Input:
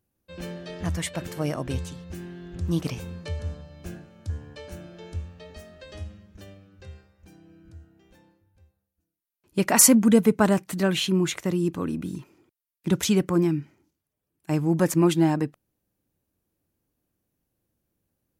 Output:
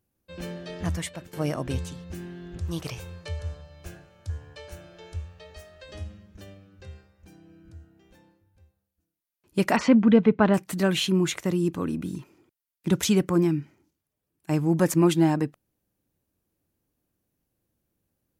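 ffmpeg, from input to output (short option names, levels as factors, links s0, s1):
-filter_complex "[0:a]asettb=1/sr,asplit=3[s0][s1][s2];[s0]atrim=end=2.584[s3];[s1]atrim=start=2.58:end=5.89,asetpts=PTS-STARTPTS,afade=t=in:d=0.004:c=qsin,afade=t=out:st=3.306:d=0.004:c=qsin,equalizer=f=230:w=1.5:g=-15[s4];[s2]atrim=start=5.886[s5];[s3][s4]acrossfade=d=0.004:c1=hsin:c2=qsin[s6];[s6][s5]acrossfade=d=0.004:c1=qsin:c2=hsin,asettb=1/sr,asplit=3[s7][s8][s9];[s7]atrim=end=9.764[s10];[s8]atrim=start=9.76:end=10.54,asetpts=PTS-STARTPTS,afade=t=in:d=0.004:c=qsin,afade=t=out:st=0.776:d=0.004:c=qsin,lowpass=f=3500:w=0.5412,lowpass=f=3500:w=1.3066[s11];[s9]atrim=start=10.536[s12];[s10][s11]acrossfade=d=0.004:c1=hsin:c2=qsin[s13];[s13][s12]acrossfade=d=0.004:c1=qsin:c2=hsin,asplit=2[s14][s15];[s14]atrim=end=1.33,asetpts=PTS-STARTPTS,afade=t=out:st=0.9:d=0.43:silence=0.112202[s16];[s15]atrim=start=1.33,asetpts=PTS-STARTPTS,afade=t=in:d=0.004:c=hsin:silence=0.112202[s17];[s16][s17]concat=n=2:v=0:a=1"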